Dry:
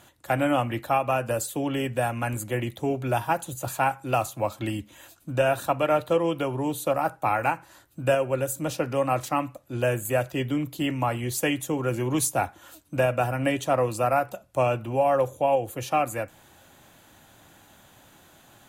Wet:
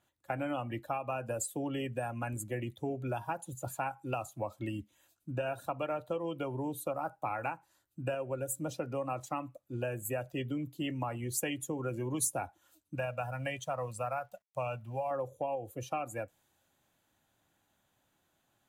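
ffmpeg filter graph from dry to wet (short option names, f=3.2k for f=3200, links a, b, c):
-filter_complex "[0:a]asettb=1/sr,asplit=3[a][b][c];[a]atrim=end=12.954[d];[b]atrim=start=12.95:end=15.11,asetpts=PTS-STARTPTS,afade=t=in:d=0.004:c=qsin,afade=t=out:st=2.156:d=0.004:c=qsin,aeval=exprs='sgn(val(0))*max(abs(val(0))-0.00251,0)':c=same,equalizer=f=320:t=o:w=0.81:g=-14.5,acrusher=bits=9:mode=log:mix=0:aa=0.000001[e];[c]atrim=start=15.106[f];[d][e]acrossfade=d=0.004:c1=hsin:c2=qsin[g];[g][f]acrossfade=d=0.004:c1=qsin:c2=hsin,afftdn=nr=15:nf=-33,acompressor=threshold=-25dB:ratio=6,adynamicequalizer=threshold=0.00316:dfrequency=3400:dqfactor=0.7:tfrequency=3400:tqfactor=0.7:attack=5:release=100:ratio=0.375:range=3:mode=boostabove:tftype=highshelf,volume=-6.5dB"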